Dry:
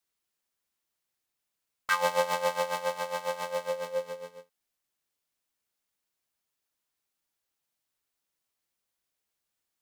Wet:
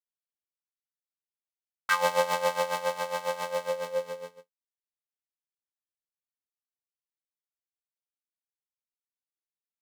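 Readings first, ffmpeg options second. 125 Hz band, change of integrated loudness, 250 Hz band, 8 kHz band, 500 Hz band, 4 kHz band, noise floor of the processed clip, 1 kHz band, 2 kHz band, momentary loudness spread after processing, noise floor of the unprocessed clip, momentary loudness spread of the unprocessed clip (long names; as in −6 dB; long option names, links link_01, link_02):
+1.5 dB, +1.5 dB, +1.5 dB, +1.5 dB, +1.5 dB, +1.5 dB, below −85 dBFS, +1.5 dB, +1.5 dB, 15 LU, −85 dBFS, 15 LU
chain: -af "agate=range=-33dB:threshold=-41dB:ratio=3:detection=peak,volume=1.5dB"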